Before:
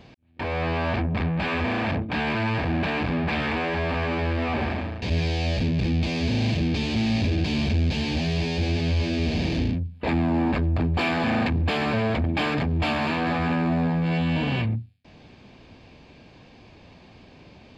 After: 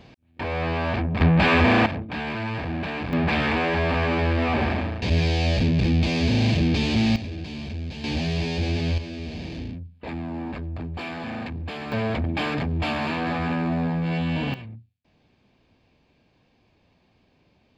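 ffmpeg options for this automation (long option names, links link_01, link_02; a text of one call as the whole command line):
ffmpeg -i in.wav -af "asetnsamples=nb_out_samples=441:pad=0,asendcmd='1.21 volume volume 8dB;1.86 volume volume -4dB;3.13 volume volume 3dB;7.16 volume volume -9.5dB;8.04 volume volume -0.5dB;8.98 volume volume -9dB;11.92 volume volume -1.5dB;14.54 volume volume -14dB',volume=0dB" out.wav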